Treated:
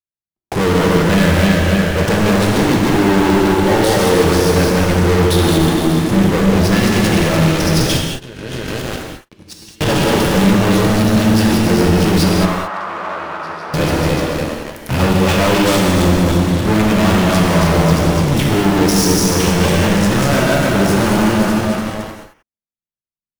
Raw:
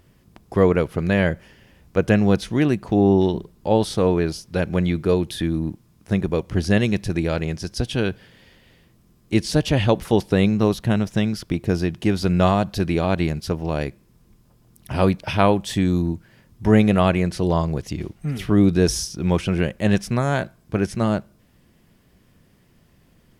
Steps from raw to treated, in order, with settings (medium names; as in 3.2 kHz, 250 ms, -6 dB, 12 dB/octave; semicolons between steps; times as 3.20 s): backward echo that repeats 147 ms, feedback 61%, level -2.5 dB; gate -45 dBFS, range -19 dB; waveshaping leveller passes 5; 7.97–9.81 s: compressor with a negative ratio -30 dBFS, ratio -1; waveshaping leveller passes 5; 12.45–13.74 s: band-pass filter 1.2 kHz, Q 2.4; gated-style reverb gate 240 ms flat, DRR 0 dB; trim -15.5 dB